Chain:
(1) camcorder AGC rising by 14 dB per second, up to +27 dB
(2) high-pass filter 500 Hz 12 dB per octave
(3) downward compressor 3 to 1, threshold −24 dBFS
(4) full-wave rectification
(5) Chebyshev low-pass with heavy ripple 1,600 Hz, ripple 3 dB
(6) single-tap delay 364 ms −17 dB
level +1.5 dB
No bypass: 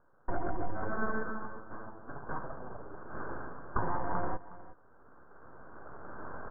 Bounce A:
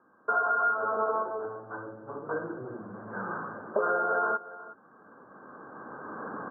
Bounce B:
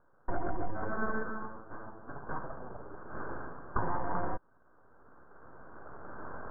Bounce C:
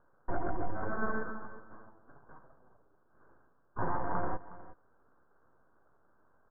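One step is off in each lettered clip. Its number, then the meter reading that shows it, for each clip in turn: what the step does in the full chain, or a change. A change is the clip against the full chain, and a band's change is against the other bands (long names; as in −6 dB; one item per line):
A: 4, 125 Hz band −13.5 dB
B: 6, change in momentary loudness spread −2 LU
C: 1, change in crest factor −2.0 dB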